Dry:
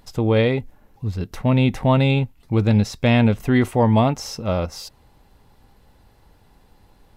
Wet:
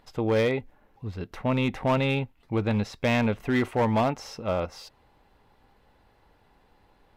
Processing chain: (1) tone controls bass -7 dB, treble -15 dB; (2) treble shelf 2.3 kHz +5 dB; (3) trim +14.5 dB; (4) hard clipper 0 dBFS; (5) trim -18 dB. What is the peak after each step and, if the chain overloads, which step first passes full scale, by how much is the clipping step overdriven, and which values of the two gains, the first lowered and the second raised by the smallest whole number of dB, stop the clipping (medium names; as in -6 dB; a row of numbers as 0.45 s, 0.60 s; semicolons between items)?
-8.0 dBFS, -7.5 dBFS, +7.0 dBFS, 0.0 dBFS, -18.0 dBFS; step 3, 7.0 dB; step 3 +7.5 dB, step 5 -11 dB